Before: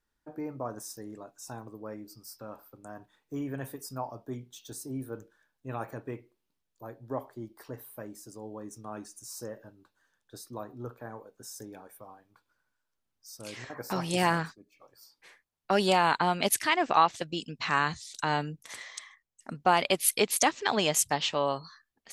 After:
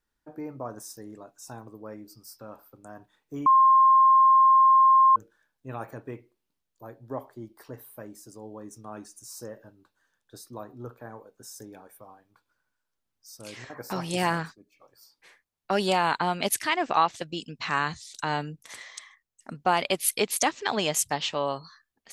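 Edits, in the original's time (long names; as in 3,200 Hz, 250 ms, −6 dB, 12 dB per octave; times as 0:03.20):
0:03.46–0:05.16: beep over 1,060 Hz −14 dBFS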